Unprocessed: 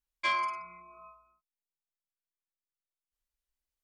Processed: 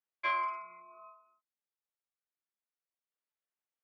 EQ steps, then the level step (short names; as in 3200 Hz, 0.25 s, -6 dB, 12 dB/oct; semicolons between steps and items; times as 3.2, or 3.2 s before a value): BPF 380–2100 Hz; notch 1000 Hz, Q 18; 0.0 dB